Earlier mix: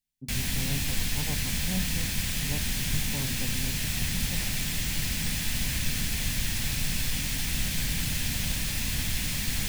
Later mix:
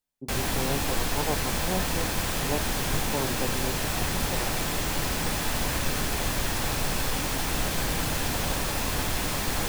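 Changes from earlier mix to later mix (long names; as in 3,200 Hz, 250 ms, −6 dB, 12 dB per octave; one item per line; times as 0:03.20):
speech: send −7.0 dB
master: add flat-topped bell 660 Hz +15 dB 2.5 octaves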